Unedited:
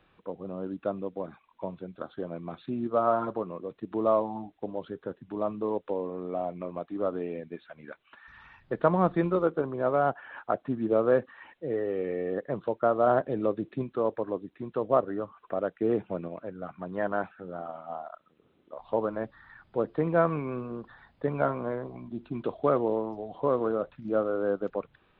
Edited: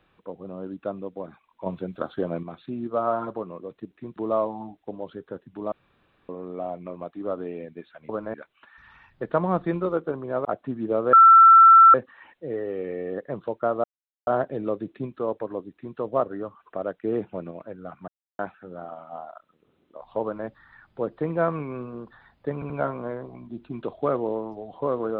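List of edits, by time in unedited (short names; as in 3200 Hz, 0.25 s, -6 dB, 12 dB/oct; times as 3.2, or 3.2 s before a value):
1.66–2.43 gain +8 dB
5.47–6.04 room tone
9.95–10.46 cut
11.14 add tone 1340 Hz -8 dBFS 0.81 s
13.04 insert silence 0.43 s
14.49–14.74 copy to 3.91
16.85–17.16 mute
18.99–19.24 copy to 7.84
21.31 stutter 0.08 s, 3 plays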